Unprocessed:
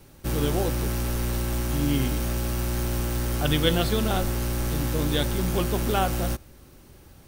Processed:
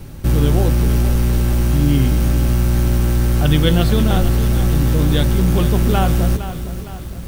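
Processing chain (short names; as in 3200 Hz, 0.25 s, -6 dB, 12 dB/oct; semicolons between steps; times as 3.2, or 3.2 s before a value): tone controls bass +9 dB, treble -2 dB; in parallel at -2.5 dB: negative-ratio compressor -25 dBFS, ratio -1; on the sum: lo-fi delay 0.461 s, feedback 55%, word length 6-bit, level -11 dB; gain +2 dB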